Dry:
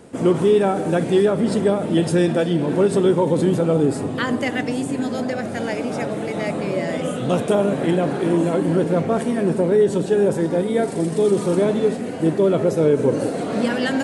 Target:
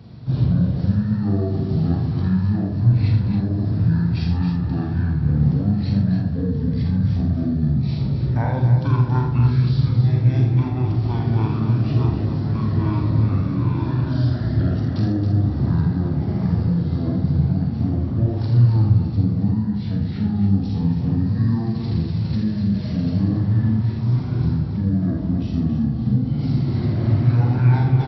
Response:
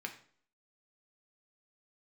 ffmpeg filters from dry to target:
-filter_complex "[0:a]acompressor=threshold=-22dB:ratio=6,equalizer=f=240:t=o:w=0.92:g=12.5,asplit=2[a][b];[1:a]atrim=start_sample=2205,asetrate=25578,aresample=44100[c];[b][c]afir=irnorm=-1:irlink=0,volume=-13dB[d];[a][d]amix=inputs=2:normalize=0,flanger=delay=19.5:depth=7.9:speed=1.3,aecho=1:1:40.82|137:0.447|0.398,asetrate=22050,aresample=44100"

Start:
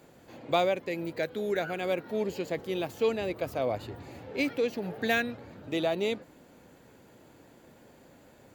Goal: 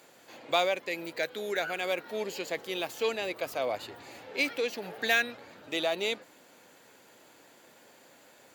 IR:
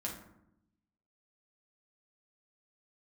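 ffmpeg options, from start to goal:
-filter_complex "[0:a]highpass=f=830:p=1,equalizer=f=6.1k:t=o:w=3:g=3.5,asplit=2[a][b];[b]asoftclip=type=hard:threshold=-28.5dB,volume=-11dB[c];[a][c]amix=inputs=2:normalize=0,volume=1dB"

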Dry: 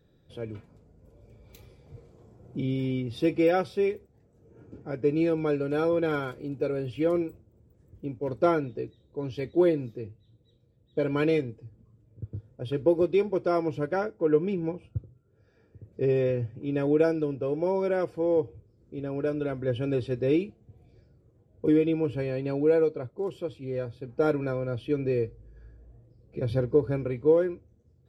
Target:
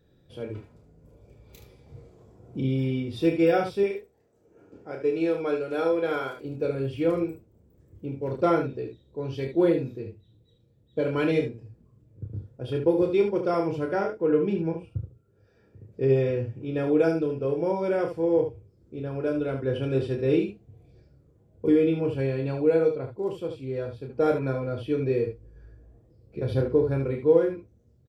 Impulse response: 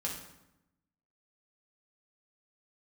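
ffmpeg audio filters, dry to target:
-filter_complex "[0:a]asettb=1/sr,asplit=3[a][b][c];[a]atrim=end=3.834[d];[b]atrim=start=3.83:end=6.45,asetpts=PTS-STARTPTS,afade=t=in:d=0.004:c=qsin,afade=t=out:st=2.616:d=0.004:c=qsin,bass=f=250:g=-13,treble=f=4k:g=0[e];[c]atrim=start=6.446[f];[d][e]acrossfade=d=0.004:c1=hsin:c2=qsin[g];[g][f]acrossfade=d=0.004:c1=qsin:c2=hsin,aecho=1:1:30|74:0.562|0.422"

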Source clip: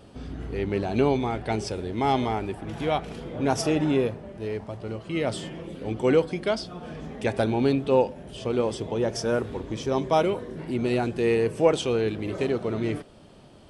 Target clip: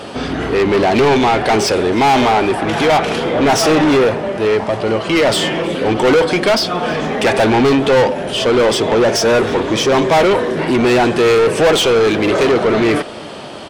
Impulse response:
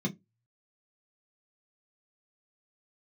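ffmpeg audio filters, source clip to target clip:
-filter_complex "[0:a]asplit=2[a][b];[b]highpass=f=720:p=1,volume=31dB,asoftclip=type=tanh:threshold=-6.5dB[c];[a][c]amix=inputs=2:normalize=0,lowpass=f=4.2k:p=1,volume=-6dB,asplit=2[d][e];[e]aecho=0:1:317:0.0631[f];[d][f]amix=inputs=2:normalize=0,volume=2.5dB"

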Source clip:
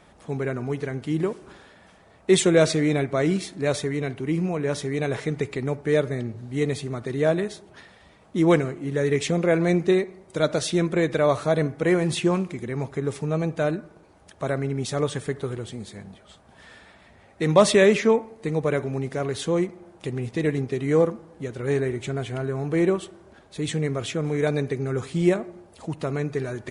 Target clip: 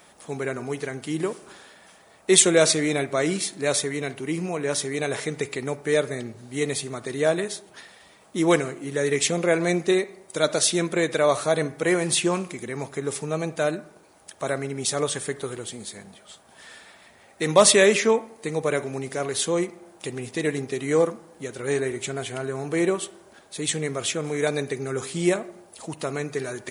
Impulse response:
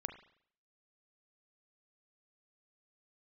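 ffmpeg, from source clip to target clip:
-filter_complex "[0:a]aemphasis=mode=production:type=bsi,asplit=2[a][b];[1:a]atrim=start_sample=2205[c];[b][c]afir=irnorm=-1:irlink=0,volume=-8.5dB[d];[a][d]amix=inputs=2:normalize=0,volume=-1dB"

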